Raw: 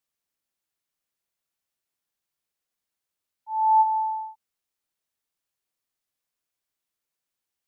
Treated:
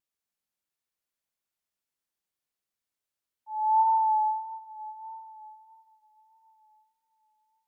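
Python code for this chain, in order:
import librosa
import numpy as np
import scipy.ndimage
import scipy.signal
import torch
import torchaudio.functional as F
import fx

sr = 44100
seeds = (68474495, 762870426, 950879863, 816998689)

y = fx.rev_plate(x, sr, seeds[0], rt60_s=4.4, hf_ratio=0.8, predelay_ms=0, drr_db=3.0)
y = fx.vibrato(y, sr, rate_hz=1.6, depth_cents=29.0)
y = y * 10.0 ** (-5.5 / 20.0)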